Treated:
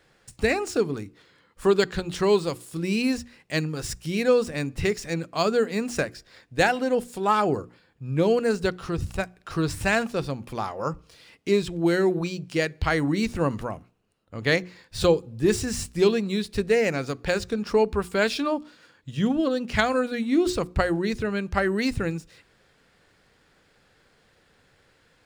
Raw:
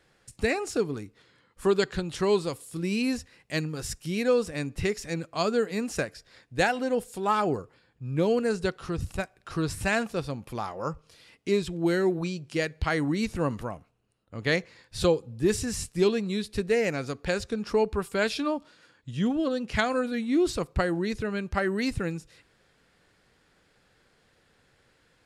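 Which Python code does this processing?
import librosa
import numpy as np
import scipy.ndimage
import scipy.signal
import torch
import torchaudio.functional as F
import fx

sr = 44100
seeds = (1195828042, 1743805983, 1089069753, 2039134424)

y = scipy.ndimage.median_filter(x, 3, mode='constant')
y = fx.hum_notches(y, sr, base_hz=60, count=6)
y = F.gain(torch.from_numpy(y), 3.5).numpy()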